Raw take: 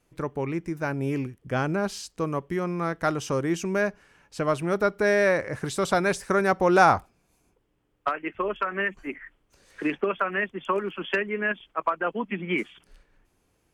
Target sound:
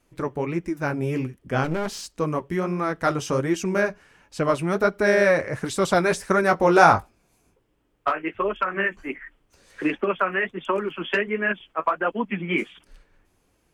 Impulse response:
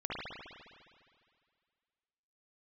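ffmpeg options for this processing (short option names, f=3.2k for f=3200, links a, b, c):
-filter_complex "[0:a]flanger=delay=3.1:depth=9.7:regen=-33:speed=1.4:shape=sinusoidal,asettb=1/sr,asplit=3[a][b][c];[a]atrim=end=1.644[d];[b]atrim=start=1.64:end=2.08,asetpts=PTS-STARTPTS,afade=t=in:d=0.004:c=qsin,afade=t=out:st=0.436:d=0.004:c=qsin,aeval=exprs='clip(val(0),-1,0.0106)':c=same[e];[c]atrim=start=2.076[f];[d][e]acrossfade=d=0.004:c1=hsin:c2=qsin[g];[g][f]acrossfade=d=0.004:c1=qsin:c2=hsin,asettb=1/sr,asplit=3[h][i][j];[h]atrim=end=6.414[k];[i]atrim=start=6.41:end=8.23,asetpts=PTS-STARTPTS,afade=t=in:d=0.004:c=qsin,afade=t=out:st=1.816:d=0.004:c=qsin,asplit=2[l][m];[m]adelay=19,volume=-8.5dB[n];[l][n]amix=inputs=2:normalize=0,atrim=end_sample=80262[o];[j]atrim=start=8.226[p];[k][o]acrossfade=d=0.004:c1=hsin:c2=qsin[q];[q][p]acrossfade=d=0.004:c1=qsin:c2=hsin,volume=6.5dB"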